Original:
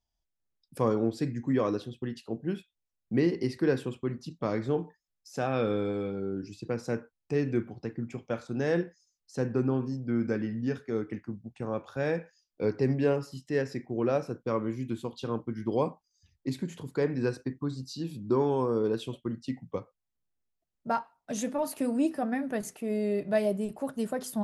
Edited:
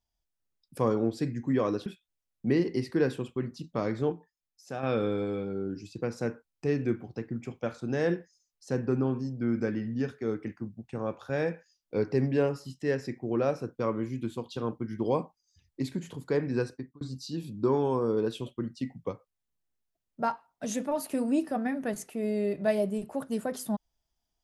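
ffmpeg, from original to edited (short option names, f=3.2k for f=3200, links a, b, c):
-filter_complex "[0:a]asplit=5[a][b][c][d][e];[a]atrim=end=1.862[f];[b]atrim=start=2.528:end=4.792[g];[c]atrim=start=4.788:end=5.502,asetpts=PTS-STARTPTS,volume=-6dB[h];[d]atrim=start=5.498:end=17.68,asetpts=PTS-STARTPTS,afade=t=out:st=11.802:d=0.38[i];[e]atrim=start=17.68,asetpts=PTS-STARTPTS,afade=t=in:d=0.004:c=hsin[j];[f][g]acrossfade=d=0.004:c1=hsin:c2=hsin[k];[k][h]acrossfade=d=0.004:c1=hsin:c2=hsin[l];[i][j]concat=n=2:v=0:a=1[m];[l][m]acrossfade=d=0.004:c1=hsin:c2=hsin"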